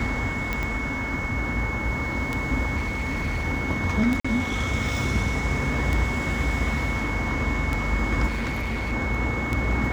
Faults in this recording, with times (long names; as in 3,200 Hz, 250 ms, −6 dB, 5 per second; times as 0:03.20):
scratch tick 33 1/3 rpm −12 dBFS
whistle 2,200 Hz −30 dBFS
0:00.63: click −15 dBFS
0:02.76–0:03.45: clipping −22.5 dBFS
0:04.20–0:04.25: drop-out 45 ms
0:08.27–0:08.93: clipping −24 dBFS